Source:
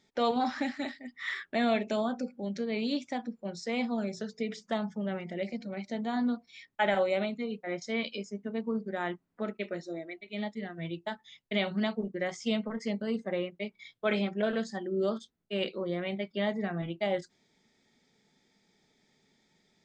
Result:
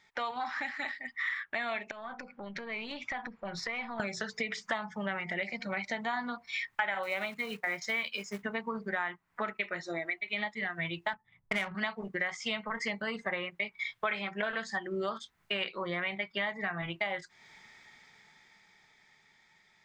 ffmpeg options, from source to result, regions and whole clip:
ffmpeg -i in.wav -filter_complex "[0:a]asettb=1/sr,asplit=3[link_01][link_02][link_03];[link_01]atrim=end=1.914[link_04];[link_02]atrim=start=1.91:end=4,asetpts=PTS-STARTPTS,afade=type=in:duration=0.004:curve=qsin,afade=type=out:start_time=2.086:duration=0.004:curve=qsin,lowpass=3600,acompressor=threshold=-42dB:ratio=6:attack=3.2:release=140:knee=1:detection=peak,aeval=exprs='(tanh(31.6*val(0)+0.5)-tanh(0.5))/31.6':channel_layout=same[link_05];[link_03]atrim=start=3.996[link_06];[link_04][link_05]acrossfade=duration=0.004:curve1=hsin:curve2=qsin[link_07];[link_07][link_06]acrossfade=duration=0.004:curve1=qsin:curve2=hsin,asettb=1/sr,asplit=3[link_08][link_09][link_10];[link_08]atrim=end=7.034[link_11];[link_09]atrim=start=7.03:end=8.43,asetpts=PTS-STARTPTS,afade=type=in:duration=0.004:curve=qsin,afade=type=out:start_time=1.396:duration=0.004:curve=qsin,highpass=64,acrusher=bits=6:mode=log:mix=0:aa=0.000001[link_12];[link_10]atrim=start=8.426[link_13];[link_11][link_12]acrossfade=duration=0.004:curve1=hsin:curve2=qsin[link_14];[link_14][link_13]acrossfade=duration=0.004:curve1=qsin:curve2=hsin,asettb=1/sr,asplit=3[link_15][link_16][link_17];[link_15]atrim=end=11.134[link_18];[link_16]atrim=start=11.13:end=11.75,asetpts=PTS-STARTPTS,afade=type=in:duration=0.004:curve=qsin,afade=type=out:start_time=0.616:duration=0.004:curve=qsin,bass=frequency=250:gain=6,treble=frequency=4000:gain=-8,adynamicsmooth=sensitivity=6:basefreq=520[link_19];[link_17]atrim=start=11.746[link_20];[link_18][link_19]acrossfade=duration=0.004:curve1=hsin:curve2=qsin[link_21];[link_21][link_20]acrossfade=duration=0.004:curve1=qsin:curve2=hsin,dynaudnorm=framelen=160:gausssize=31:maxgain=15dB,equalizer=frequency=250:width_type=o:width=1:gain=-10,equalizer=frequency=500:width_type=o:width=1:gain=-6,equalizer=frequency=1000:width_type=o:width=1:gain=9,equalizer=frequency=2000:width_type=o:width=1:gain=10,acompressor=threshold=-33dB:ratio=5" out.wav

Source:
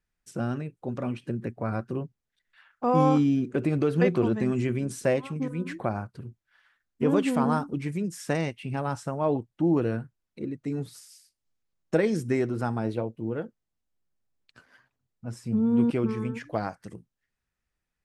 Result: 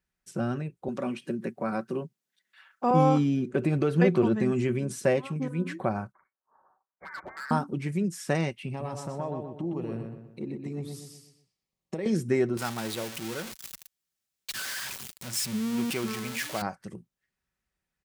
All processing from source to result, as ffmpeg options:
ffmpeg -i in.wav -filter_complex "[0:a]asettb=1/sr,asplit=3[link_01][link_02][link_03];[link_01]atrim=end=0.884[link_04];[link_02]atrim=start=0.88:end=2.91,asetpts=PTS-STARTPTS,afade=type=in:duration=0.004:curve=qsin,afade=type=out:start_time=2.026:duration=0.004:curve=qsin,highpass=frequency=160:width=0.5412,highpass=frequency=160:width=1.3066,highshelf=frequency=3500:gain=6.5[link_05];[link_03]atrim=start=2.906[link_06];[link_04][link_05]acrossfade=duration=0.004:curve1=hsin:curve2=qsin[link_07];[link_07][link_06]acrossfade=duration=0.004:curve1=qsin:curve2=hsin,asettb=1/sr,asplit=3[link_08][link_09][link_10];[link_08]atrim=end=6.124[link_11];[link_09]atrim=start=6.12:end=7.51,asetpts=PTS-STARTPTS,afade=type=in:duration=0.004:curve=qsin,afade=type=out:start_time=1.386:duration=0.004:curve=qsin,highpass=frequency=980:width=0.5412,highpass=frequency=980:width=1.3066,lowpass=frequency=2200:width_type=q:width=0.5098,lowpass=frequency=2200:width_type=q:width=0.6013,lowpass=frequency=2200:width_type=q:width=0.9,lowpass=frequency=2200:width_type=q:width=2.563,afreqshift=-2600,volume=35.5dB,asoftclip=hard,volume=-35.5dB[link_12];[link_10]atrim=start=7.506[link_13];[link_11][link_12]acrossfade=duration=0.004:curve1=hsin:curve2=qsin[link_14];[link_14][link_13]acrossfade=duration=0.004:curve1=qsin:curve2=hsin,asettb=1/sr,asplit=3[link_15][link_16][link_17];[link_15]atrim=end=8.684[link_18];[link_16]atrim=start=8.68:end=12.06,asetpts=PTS-STARTPTS,afade=type=in:duration=0.004:curve=qsin,afade=type=out:start_time=3.376:duration=0.004:curve=qsin,equalizer=frequency=1500:width_type=o:width=0.22:gain=-14.5,acompressor=threshold=-30dB:ratio=6:attack=3.2:release=140:knee=1:detection=peak,asplit=2[link_19][link_20];[link_20]adelay=123,lowpass=frequency=3600:poles=1,volume=-4.5dB,asplit=2[link_21][link_22];[link_22]adelay=123,lowpass=frequency=3600:poles=1,volume=0.44,asplit=2[link_23][link_24];[link_24]adelay=123,lowpass=frequency=3600:poles=1,volume=0.44,asplit=2[link_25][link_26];[link_26]adelay=123,lowpass=frequency=3600:poles=1,volume=0.44,asplit=2[link_27][link_28];[link_28]adelay=123,lowpass=frequency=3600:poles=1,volume=0.44[link_29];[link_19][link_21][link_23][link_25][link_27][link_29]amix=inputs=6:normalize=0,atrim=end_sample=149058[link_30];[link_17]atrim=start=12.056[link_31];[link_18][link_30]acrossfade=duration=0.004:curve1=hsin:curve2=qsin[link_32];[link_32][link_31]acrossfade=duration=0.004:curve1=qsin:curve2=hsin,asettb=1/sr,asplit=3[link_33][link_34][link_35];[link_33]atrim=end=12.574[link_36];[link_34]atrim=start=12.57:end=16.62,asetpts=PTS-STARTPTS,afade=type=in:duration=0.004:curve=qsin,afade=type=out:start_time=4.046:duration=0.004:curve=qsin,aeval=exprs='val(0)+0.5*0.0224*sgn(val(0))':channel_layout=same,tiltshelf=frequency=1400:gain=-9[link_37];[link_35]atrim=start=16.616[link_38];[link_36][link_37]acrossfade=duration=0.004:curve1=hsin:curve2=qsin[link_39];[link_39][link_38]acrossfade=duration=0.004:curve1=qsin:curve2=hsin,highpass=43,aecho=1:1:5.3:0.32" out.wav

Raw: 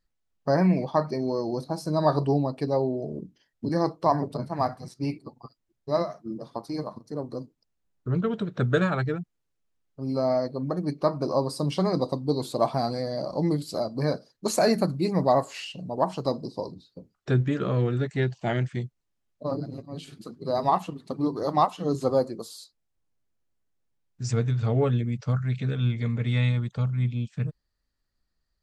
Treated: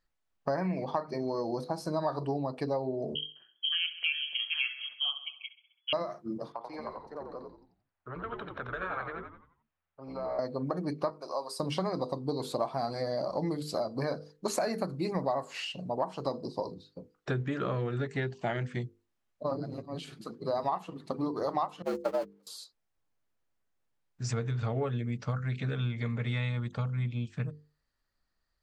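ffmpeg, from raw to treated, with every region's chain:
ffmpeg -i in.wav -filter_complex "[0:a]asettb=1/sr,asplit=3[link_01][link_02][link_03];[link_01]atrim=end=3.154[link_04];[link_02]atrim=start=3.15:end=5.93,asetpts=PTS-STARTPTS,afade=type=in:duration=0.004:curve=qsin,afade=type=out:start_time=2.776:duration=0.004:curve=qsin,lowpass=frequency=2900:width_type=q:width=0.5098,lowpass=frequency=2900:width_type=q:width=0.6013,lowpass=frequency=2900:width_type=q:width=0.9,lowpass=frequency=2900:width_type=q:width=2.563,afreqshift=-3400,aecho=1:1:66|132|198|264|330:0.15|0.0868|0.0503|0.0292|0.0169,atrim=end_sample=122598[link_05];[link_03]atrim=start=5.926[link_06];[link_04][link_05]acrossfade=duration=0.004:curve1=hsin:curve2=qsin[link_07];[link_07][link_06]acrossfade=duration=0.004:curve1=qsin:curve2=hsin,asettb=1/sr,asplit=3[link_08][link_09][link_10];[link_08]atrim=end=6.524[link_11];[link_09]atrim=start=6.52:end=10.39,asetpts=PTS-STARTPTS,afade=type=in:duration=0.004:curve=qsin,afade=type=out:start_time=3.866:duration=0.004:curve=qsin,acrossover=split=520 3100:gain=0.178 1 0.112[link_12][link_13][link_14];[link_12][link_13][link_14]amix=inputs=3:normalize=0,acompressor=threshold=-36dB:ratio=4:attack=3.2:release=140:knee=1:detection=peak,asplit=6[link_15][link_16][link_17][link_18][link_19][link_20];[link_16]adelay=88,afreqshift=-80,volume=-4dB[link_21];[link_17]adelay=176,afreqshift=-160,volume=-11.7dB[link_22];[link_18]adelay=264,afreqshift=-240,volume=-19.5dB[link_23];[link_19]adelay=352,afreqshift=-320,volume=-27.2dB[link_24];[link_20]adelay=440,afreqshift=-400,volume=-35dB[link_25];[link_15][link_21][link_22][link_23][link_24][link_25]amix=inputs=6:normalize=0,atrim=end_sample=170667[link_26];[link_10]atrim=start=10.386[link_27];[link_11][link_26]acrossfade=duration=0.004:curve1=hsin:curve2=qsin[link_28];[link_28][link_27]acrossfade=duration=0.004:curve1=qsin:curve2=hsin,asettb=1/sr,asplit=3[link_29][link_30][link_31];[link_29]atrim=end=11.104[link_32];[link_30]atrim=start=11.1:end=11.6,asetpts=PTS-STARTPTS,afade=type=in:duration=0.004:curve=qsin,afade=type=out:start_time=0.496:duration=0.004:curve=qsin,highpass=730,equalizer=frequency=1500:width=0.42:gain=-6.5[link_33];[link_31]atrim=start=11.596[link_34];[link_32][link_33]acrossfade=duration=0.004:curve1=hsin:curve2=qsin[link_35];[link_35][link_34]acrossfade=duration=0.004:curve1=qsin:curve2=hsin,asettb=1/sr,asplit=3[link_36][link_37][link_38];[link_36]atrim=end=21.824[link_39];[link_37]atrim=start=21.82:end=22.47,asetpts=PTS-STARTPTS,afade=type=in:duration=0.004:curve=qsin,afade=type=out:start_time=0.646:duration=0.004:curve=qsin,aeval=exprs='val(0)+0.5*0.0355*sgn(val(0))':channel_layout=same,agate=range=-42dB:threshold=-24dB:ratio=16:release=100:detection=peak,afreqshift=70[link_40];[link_38]atrim=start=22.466[link_41];[link_39][link_40]acrossfade=duration=0.004:curve1=hsin:curve2=qsin[link_42];[link_42][link_41]acrossfade=duration=0.004:curve1=qsin:curve2=hsin,equalizer=frequency=1200:width=0.39:gain=7,bandreject=frequency=50:width_type=h:width=6,bandreject=frequency=100:width_type=h:width=6,bandreject=frequency=150:width_type=h:width=6,bandreject=frequency=200:width_type=h:width=6,bandreject=frequency=250:width_type=h:width=6,bandreject=frequency=300:width_type=h:width=6,bandreject=frequency=350:width_type=h:width=6,bandreject=frequency=400:width_type=h:width=6,bandreject=frequency=450:width_type=h:width=6,bandreject=frequency=500:width_type=h:width=6,acompressor=threshold=-25dB:ratio=5,volume=-3.5dB" out.wav

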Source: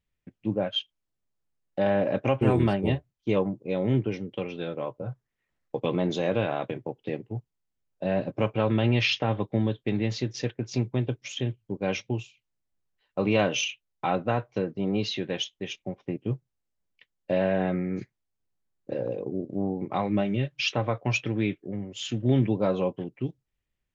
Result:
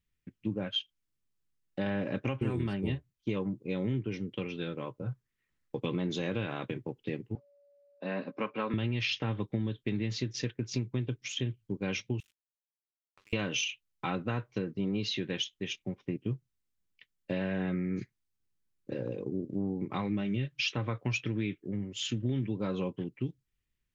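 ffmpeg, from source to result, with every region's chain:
ffmpeg -i in.wav -filter_complex "[0:a]asettb=1/sr,asplit=3[link_01][link_02][link_03];[link_01]atrim=end=7.354[link_04];[link_02]atrim=start=7.35:end=8.74,asetpts=PTS-STARTPTS,afade=type=in:duration=0.004:curve=qsin,afade=type=out:start_time=1.386:duration=0.004:curve=qsin,highpass=frequency=230:width=0.5412,highpass=frequency=230:width=1.3066,equalizer=frequency=340:width_type=q:width=4:gain=-7,equalizer=frequency=1100:width_type=q:width=4:gain=6,equalizer=frequency=3200:width_type=q:width=4:gain=-7,lowpass=frequency=5000:width=0.5412,lowpass=frequency=5000:width=1.3066,aeval=exprs='val(0)+0.00251*sin(2*PI*570*n/s)':channel_layout=same[link_05];[link_03]atrim=start=8.736[link_06];[link_04][link_05]acrossfade=duration=0.004:curve1=hsin:curve2=qsin[link_07];[link_07][link_06]acrossfade=duration=0.004:curve1=qsin:curve2=hsin,asettb=1/sr,asplit=3[link_08][link_09][link_10];[link_08]atrim=end=12.204[link_11];[link_09]atrim=start=12.2:end=13.33,asetpts=PTS-STARTPTS,afade=type=in:duration=0.004:curve=qsin,afade=type=out:start_time=1.126:duration=0.004:curve=qsin,highpass=1400,acompressor=threshold=-50dB:ratio=12:attack=3.2:release=140:knee=1:detection=peak,aeval=exprs='sgn(val(0))*max(abs(val(0))-0.00211,0)':channel_layout=same[link_12];[link_10]atrim=start=13.326[link_13];[link_11][link_12]acrossfade=duration=0.004:curve1=hsin:curve2=qsin[link_14];[link_14][link_13]acrossfade=duration=0.004:curve1=qsin:curve2=hsin,equalizer=frequency=670:width_type=o:width=0.9:gain=-12.5,acompressor=threshold=-28dB:ratio=6" out.wav

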